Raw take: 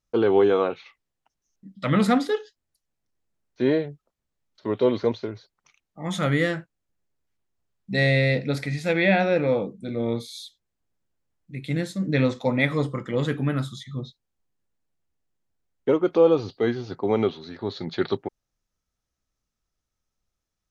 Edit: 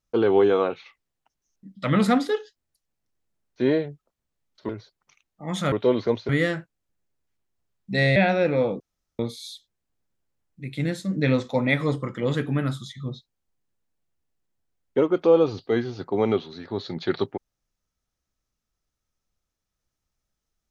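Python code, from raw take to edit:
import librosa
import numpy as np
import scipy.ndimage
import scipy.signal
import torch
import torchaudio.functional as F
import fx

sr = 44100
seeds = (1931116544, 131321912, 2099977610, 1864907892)

y = fx.edit(x, sr, fx.move(start_s=4.69, length_s=0.57, to_s=6.29),
    fx.cut(start_s=8.16, length_s=0.91),
    fx.room_tone_fill(start_s=9.71, length_s=0.39), tone=tone)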